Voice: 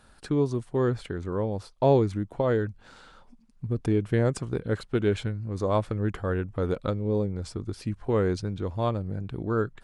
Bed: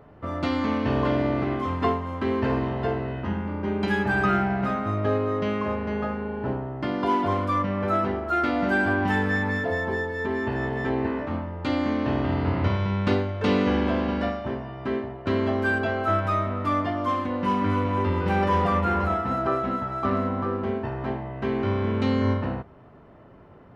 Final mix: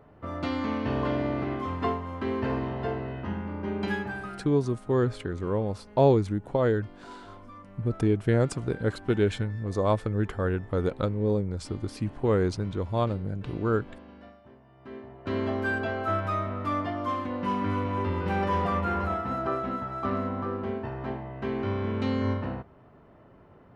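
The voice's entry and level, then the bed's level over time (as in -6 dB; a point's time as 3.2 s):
4.15 s, +0.5 dB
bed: 3.91 s -4.5 dB
4.48 s -23 dB
14.58 s -23 dB
15.38 s -4.5 dB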